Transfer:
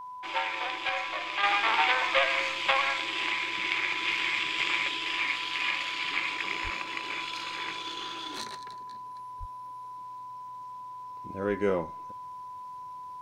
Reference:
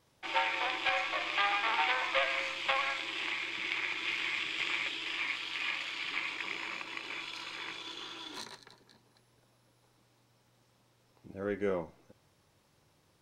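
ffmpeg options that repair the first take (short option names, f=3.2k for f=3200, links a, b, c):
-filter_complex "[0:a]adeclick=t=4,bandreject=f=1k:w=30,asplit=3[a][b][c];[a]afade=t=out:st=6.63:d=0.02[d];[b]highpass=f=140:w=0.5412,highpass=f=140:w=1.3066,afade=t=in:st=6.63:d=0.02,afade=t=out:st=6.75:d=0.02[e];[c]afade=t=in:st=6.75:d=0.02[f];[d][e][f]amix=inputs=3:normalize=0,asplit=3[g][h][i];[g]afade=t=out:st=9.39:d=0.02[j];[h]highpass=f=140:w=0.5412,highpass=f=140:w=1.3066,afade=t=in:st=9.39:d=0.02,afade=t=out:st=9.51:d=0.02[k];[i]afade=t=in:st=9.51:d=0.02[l];[j][k][l]amix=inputs=3:normalize=0,asetnsamples=n=441:p=0,asendcmd='1.43 volume volume -5.5dB',volume=0dB"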